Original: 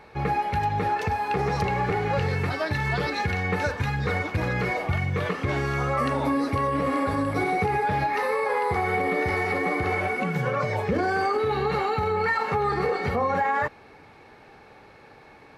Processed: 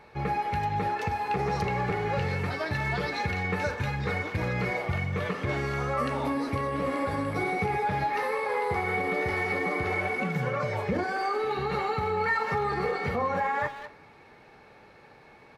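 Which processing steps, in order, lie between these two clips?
11.03–11.57 HPF 620 Hz -> 210 Hz 12 dB/oct; speakerphone echo 0.2 s, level -10 dB; on a send at -9 dB: reverb RT60 1.1 s, pre-delay 3 ms; on the sum: gain -4 dB

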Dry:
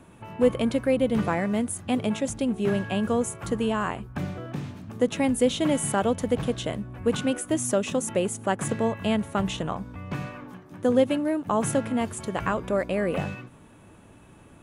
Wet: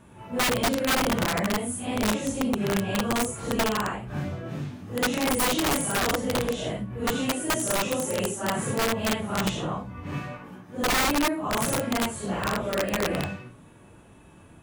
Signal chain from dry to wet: phase scrambler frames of 0.2 s; wrapped overs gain 18 dB

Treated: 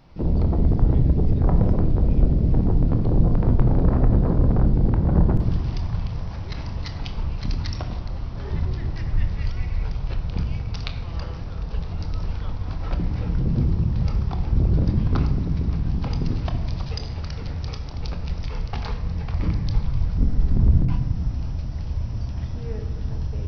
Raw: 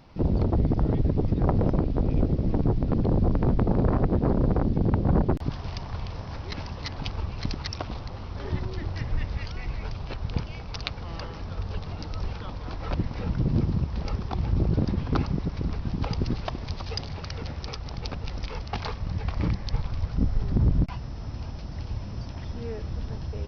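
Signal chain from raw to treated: on a send: low shelf 200 Hz +10.5 dB + reverb RT60 1.2 s, pre-delay 22 ms, DRR 5.5 dB; on the sum: gain -2 dB

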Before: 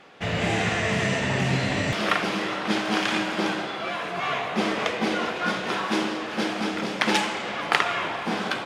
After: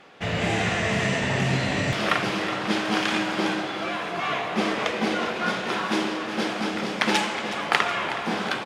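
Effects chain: on a send: feedback echo 0.369 s, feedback 57%, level -13 dB

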